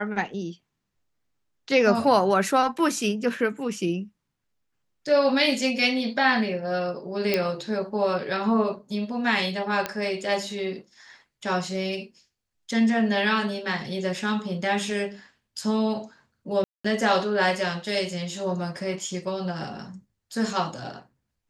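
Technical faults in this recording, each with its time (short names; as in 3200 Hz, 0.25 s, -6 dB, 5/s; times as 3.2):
7.34 pop -9 dBFS
9.86 pop -11 dBFS
16.64–16.84 gap 0.205 s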